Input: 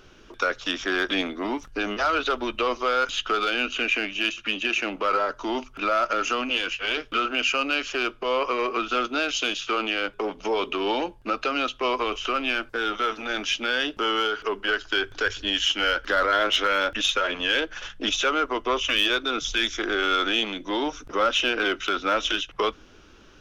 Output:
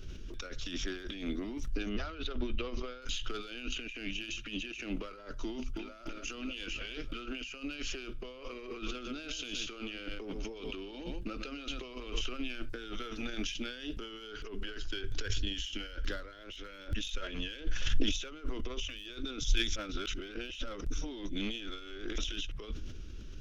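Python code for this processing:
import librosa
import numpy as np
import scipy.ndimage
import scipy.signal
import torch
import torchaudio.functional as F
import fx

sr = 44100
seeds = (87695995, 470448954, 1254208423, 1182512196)

y = fx.air_absorb(x, sr, metres=130.0, at=(1.89, 3.02))
y = fx.echo_throw(y, sr, start_s=5.46, length_s=0.47, ms=300, feedback_pct=35, wet_db=-2.5)
y = fx.echo_single(y, sr, ms=121, db=-12.5, at=(8.26, 12.21))
y = fx.sustainer(y, sr, db_per_s=27.0, at=(16.18, 18.59), fade=0.02)
y = fx.edit(y, sr, fx.reverse_span(start_s=19.76, length_s=2.42), tone=tone)
y = fx.over_compress(y, sr, threshold_db=-32.0, ratio=-1.0)
y = fx.tone_stack(y, sr, knobs='10-0-1')
y = fx.sustainer(y, sr, db_per_s=86.0)
y = F.gain(torch.from_numpy(y), 12.0).numpy()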